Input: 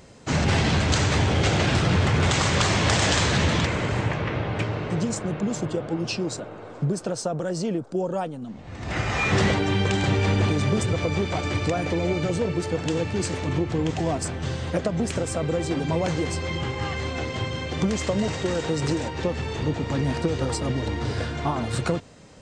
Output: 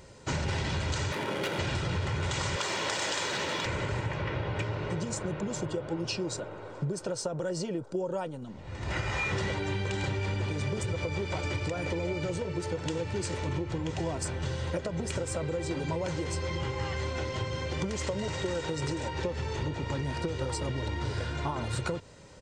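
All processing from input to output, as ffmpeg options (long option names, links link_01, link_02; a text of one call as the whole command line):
ffmpeg -i in.wav -filter_complex "[0:a]asettb=1/sr,asplit=3[link_01][link_02][link_03];[link_01]atrim=end=1.124[link_04];[link_02]atrim=start=1.12:end=1.59,asetpts=PTS-STARTPTS,afade=type=in:duration=0.004:curve=qsin,afade=type=out:start_time=0.466:duration=0.004:curve=qsin,highpass=frequency=180:width=0.5412,highpass=frequency=180:width=1.3066,bandreject=frequency=760:width=12,adynamicsmooth=sensitivity=3.5:basefreq=1200[link_05];[link_03]atrim=start=1.586[link_06];[link_04][link_05]acrossfade=duration=0.004:curve1=hsin:curve2=qsin[link_07];[link_07][link_06]acrossfade=duration=0.004:curve1=qsin:curve2=hsin,asettb=1/sr,asplit=3[link_08][link_09][link_10];[link_08]atrim=end=2.564[link_11];[link_09]atrim=start=2.56:end=3.66,asetpts=PTS-STARTPTS,afade=type=in:duration=0.004:curve=qsin,afade=type=out:start_time=1.096:duration=0.004:curve=qsin,highpass=290,aeval=exprs='sgn(val(0))*max(abs(val(0))-0.00266,0)':channel_layout=same[link_12];[link_10]atrim=start=3.656[link_13];[link_11][link_12]acrossfade=duration=0.004:curve1=hsin:curve2=qsin[link_14];[link_14][link_13]acrossfade=duration=0.004:curve1=qsin:curve2=hsin,aecho=1:1:2.1:0.44,acompressor=threshold=-25dB:ratio=6,bandreject=frequency=460:width=12,volume=-3dB" out.wav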